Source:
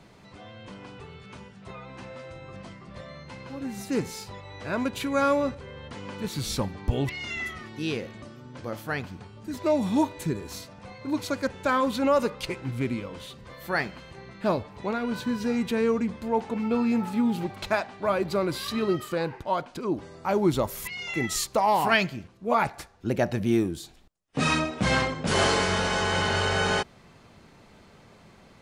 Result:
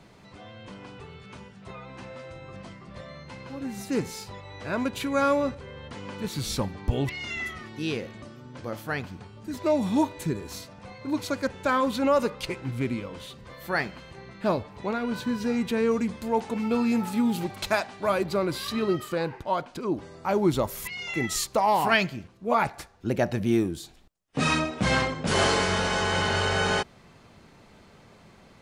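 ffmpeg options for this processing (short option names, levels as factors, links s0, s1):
-filter_complex "[0:a]asettb=1/sr,asplit=3[s0][s1][s2];[s0]atrim=end=15.914[s3];[s1]atrim=start=15.91:end=18.23,asetpts=PTS-STARTPTS,afade=t=in:d=0.004:c=qsin,afade=t=out:st=2.316:d=0.004:c=qsin,equalizer=f=13000:t=o:w=2.2:g=9[s4];[s2]atrim=start=18.226[s5];[s3][s4]acrossfade=d=0.004:c1=hsin:c2=qsin[s6];[s6][s5]acrossfade=d=0.004:c1=qsin:c2=hsin"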